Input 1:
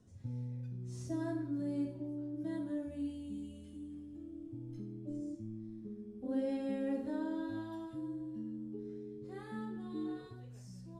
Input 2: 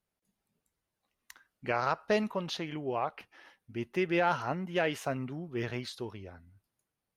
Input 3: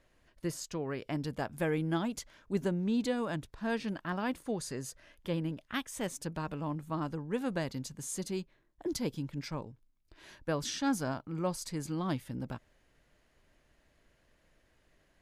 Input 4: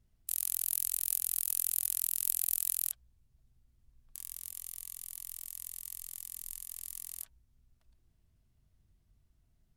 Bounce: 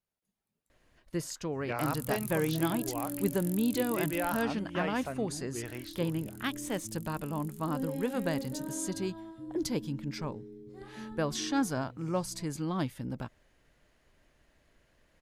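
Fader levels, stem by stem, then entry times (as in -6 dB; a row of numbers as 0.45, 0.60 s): -1.5, -5.5, +1.5, -11.0 dB; 1.45, 0.00, 0.70, 1.50 s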